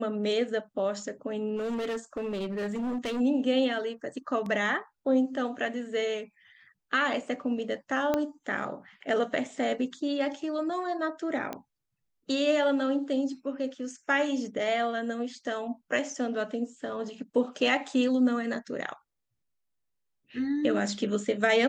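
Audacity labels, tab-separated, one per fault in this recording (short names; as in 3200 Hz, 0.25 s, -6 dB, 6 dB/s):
1.560000	3.210000	clipped -28.5 dBFS
8.140000	8.140000	pop -14 dBFS
11.530000	11.530000	pop -20 dBFS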